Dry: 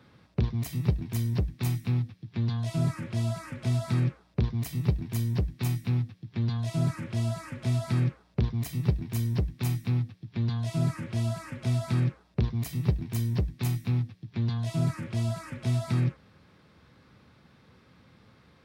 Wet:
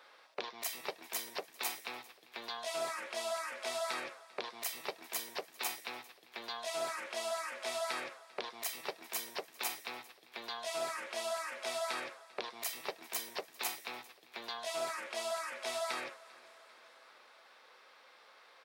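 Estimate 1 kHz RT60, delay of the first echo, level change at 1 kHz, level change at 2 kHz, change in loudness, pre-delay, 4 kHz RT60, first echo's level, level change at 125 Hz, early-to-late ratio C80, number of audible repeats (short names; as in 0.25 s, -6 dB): none, 0.396 s, +3.5 dB, +3.5 dB, -10.0 dB, none, none, -22.0 dB, under -40 dB, none, 3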